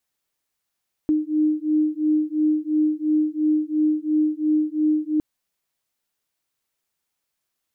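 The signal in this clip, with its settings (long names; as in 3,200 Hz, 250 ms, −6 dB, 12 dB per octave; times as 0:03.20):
two tones that beat 305 Hz, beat 2.9 Hz, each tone −21 dBFS 4.11 s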